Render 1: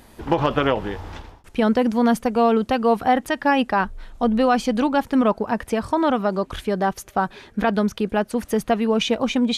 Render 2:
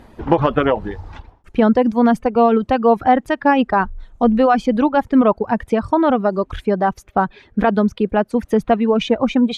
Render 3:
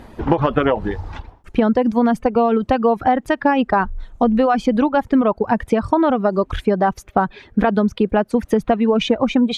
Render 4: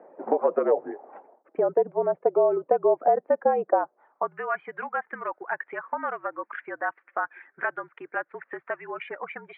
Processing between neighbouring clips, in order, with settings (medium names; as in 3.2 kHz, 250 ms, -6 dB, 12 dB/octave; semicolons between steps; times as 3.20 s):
reverb removal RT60 1 s; low-pass 1.4 kHz 6 dB/octave; trim +6 dB
compression, threshold -16 dBFS, peak gain reduction 8 dB; trim +4 dB
mistuned SSB -54 Hz 330–2300 Hz; band-pass sweep 550 Hz -> 1.7 kHz, 3.79–4.44 s